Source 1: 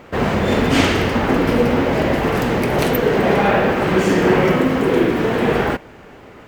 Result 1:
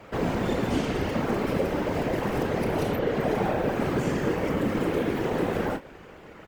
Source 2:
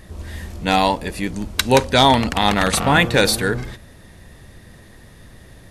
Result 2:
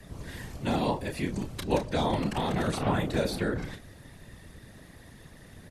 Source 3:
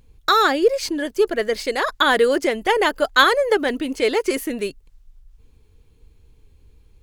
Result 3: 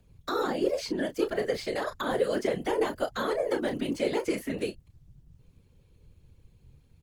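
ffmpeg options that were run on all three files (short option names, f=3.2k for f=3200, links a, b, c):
-filter_complex "[0:a]acrossover=split=120|600|4800[a][b][c][d];[a]acompressor=threshold=-32dB:ratio=4[e];[b]acompressor=threshold=-20dB:ratio=4[f];[c]acompressor=threshold=-26dB:ratio=4[g];[d]acompressor=threshold=-42dB:ratio=4[h];[e][f][g][h]amix=inputs=4:normalize=0,asplit=2[i][j];[j]adelay=31,volume=-8.5dB[k];[i][k]amix=inputs=2:normalize=0,afftfilt=real='hypot(re,im)*cos(2*PI*random(0))':imag='hypot(re,im)*sin(2*PI*random(1))':win_size=512:overlap=0.75,acrossover=split=320|1200|5000[l][m][n][o];[n]alimiter=level_in=8dB:limit=-24dB:level=0:latency=1:release=127,volume=-8dB[p];[l][m][p][o]amix=inputs=4:normalize=0"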